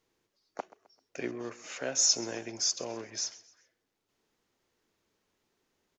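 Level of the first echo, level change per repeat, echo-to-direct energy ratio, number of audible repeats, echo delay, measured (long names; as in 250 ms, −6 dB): −19.5 dB, −8.0 dB, −19.0 dB, 2, 130 ms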